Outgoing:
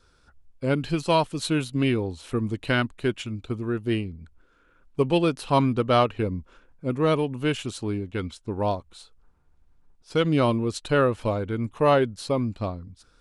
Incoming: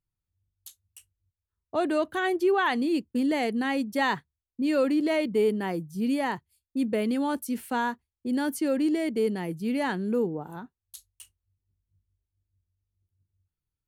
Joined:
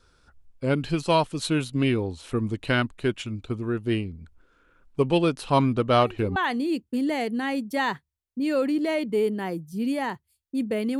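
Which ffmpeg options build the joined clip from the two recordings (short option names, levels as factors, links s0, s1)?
-filter_complex "[1:a]asplit=2[s0][s1];[0:a]apad=whole_dur=10.99,atrim=end=10.99,atrim=end=6.362[s2];[s1]atrim=start=2.578:end=7.21[s3];[s0]atrim=start=1.99:end=2.58,asetpts=PTS-STARTPTS,volume=0.133,afade=t=in:d=0.004:c=hsin,afade=t=out:st=0.586:d=0.004:c=hsin,adelay=254457S[s4];[s2][s3]acrossfade=d=0.004:c1=hsin:c2=hsin[s5];[s5][s4]amix=inputs=2:normalize=0"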